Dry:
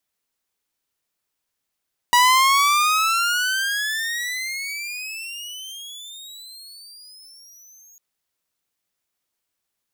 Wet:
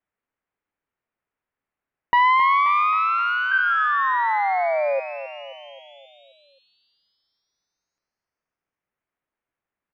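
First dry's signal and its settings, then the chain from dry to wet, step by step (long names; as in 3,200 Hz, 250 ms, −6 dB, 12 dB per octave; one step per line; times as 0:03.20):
pitch glide with a swell saw, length 5.85 s, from 965 Hz, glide +33.5 semitones, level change −34.5 dB, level −9 dB
low-pass filter 2,200 Hz 24 dB per octave
sound drawn into the spectrogram fall, 0:03.51–0:05.00, 530–1,600 Hz −22 dBFS
on a send: repeating echo 265 ms, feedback 56%, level −12 dB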